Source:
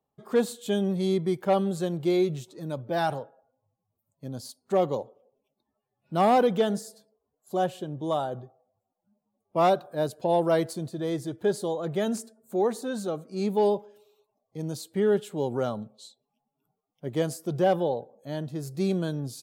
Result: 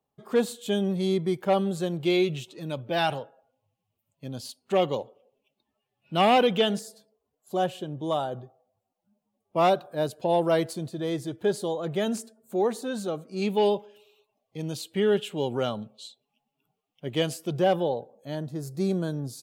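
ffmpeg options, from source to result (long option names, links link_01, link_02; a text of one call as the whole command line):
ffmpeg -i in.wav -af "asetnsamples=nb_out_samples=441:pad=0,asendcmd='2.04 equalizer g 14.5;6.79 equalizer g 5.5;13.42 equalizer g 14;17.5 equalizer g 5.5;18.35 equalizer g -5.5',equalizer=frequency=2800:width_type=o:width=0.76:gain=4" out.wav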